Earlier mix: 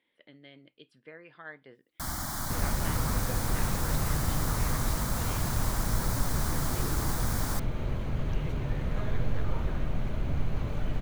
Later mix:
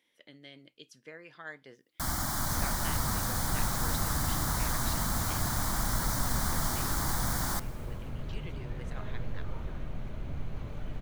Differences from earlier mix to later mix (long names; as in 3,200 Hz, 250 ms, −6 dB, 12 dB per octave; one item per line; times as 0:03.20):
speech: remove moving average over 7 samples
second sound −7.5 dB
reverb: on, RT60 2.7 s